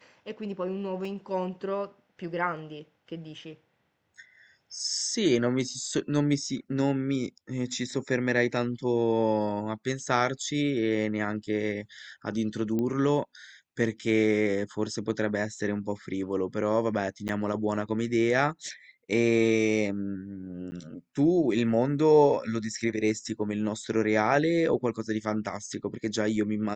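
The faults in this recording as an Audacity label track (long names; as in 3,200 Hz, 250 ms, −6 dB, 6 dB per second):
1.050000	1.050000	drop-out 3 ms
12.790000	12.790000	click −19 dBFS
17.280000	17.290000	drop-out 9.7 ms
20.710000	20.720000	drop-out 10 ms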